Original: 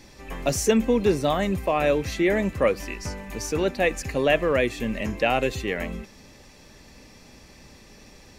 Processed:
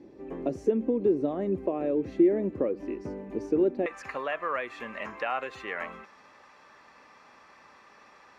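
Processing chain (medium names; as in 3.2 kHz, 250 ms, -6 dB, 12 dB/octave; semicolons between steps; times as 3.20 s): compression 6:1, threshold -24 dBFS, peak gain reduction 9.5 dB; band-pass filter 340 Hz, Q 2.8, from 3.86 s 1.2 kHz; trim +8 dB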